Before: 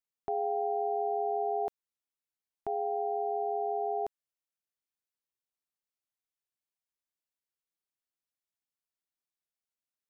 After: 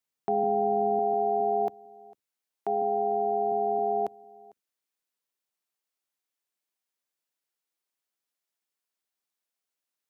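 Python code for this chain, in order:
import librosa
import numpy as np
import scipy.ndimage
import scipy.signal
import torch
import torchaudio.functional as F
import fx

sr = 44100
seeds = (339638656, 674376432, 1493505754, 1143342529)

y = fx.octave_divider(x, sr, octaves=1, level_db=0.0)
y = fx.highpass(y, sr, hz=fx.steps((0.0, 120.0), (0.99, 280.0)), slope=12)
y = y + 10.0 ** (-24.0 / 20.0) * np.pad(y, (int(451 * sr / 1000.0), 0))[:len(y)]
y = y * 10.0 ** (5.5 / 20.0)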